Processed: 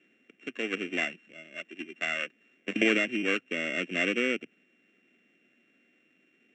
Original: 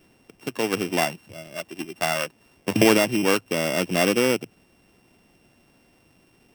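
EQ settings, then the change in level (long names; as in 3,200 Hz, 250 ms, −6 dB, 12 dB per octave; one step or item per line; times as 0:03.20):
Chebyshev high-pass filter 230 Hz, order 3
Chebyshev low-pass with heavy ripple 7,600 Hz, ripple 6 dB
phaser with its sweep stopped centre 2,200 Hz, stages 4
0.0 dB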